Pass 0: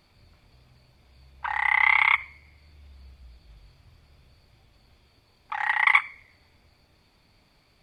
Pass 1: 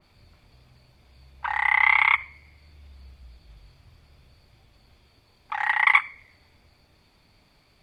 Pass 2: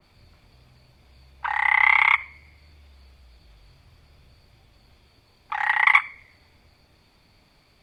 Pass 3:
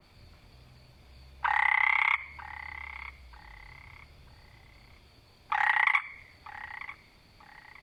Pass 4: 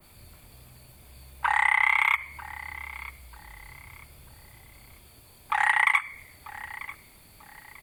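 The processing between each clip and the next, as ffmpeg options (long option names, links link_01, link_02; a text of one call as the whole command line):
ffmpeg -i in.wav -af "adynamicequalizer=threshold=0.0282:dfrequency=2800:dqfactor=0.7:tfrequency=2800:tqfactor=0.7:attack=5:release=100:ratio=0.375:range=2:mode=cutabove:tftype=highshelf,volume=1.5dB" out.wav
ffmpeg -i in.wav -filter_complex "[0:a]acrossover=split=290|1000|4000[link_01][link_02][link_03][link_04];[link_01]alimiter=level_in=25.5dB:limit=-24dB:level=0:latency=1,volume=-25.5dB[link_05];[link_04]aeval=exprs='clip(val(0),-1,0.015)':channel_layout=same[link_06];[link_05][link_02][link_03][link_06]amix=inputs=4:normalize=0,volume=1.5dB" out.wav
ffmpeg -i in.wav -af "acompressor=threshold=-21dB:ratio=6,aecho=1:1:942|1884|2826:0.141|0.0438|0.0136" out.wav
ffmpeg -i in.wav -af "aexciter=amount=9.5:drive=2.5:freq=7800,volume=3dB" out.wav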